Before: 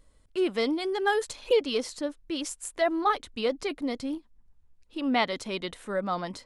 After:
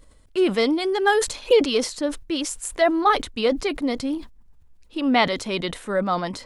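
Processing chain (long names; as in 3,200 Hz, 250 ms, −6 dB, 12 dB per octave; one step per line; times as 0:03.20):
level that may fall only so fast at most 130 dB per second
level +6.5 dB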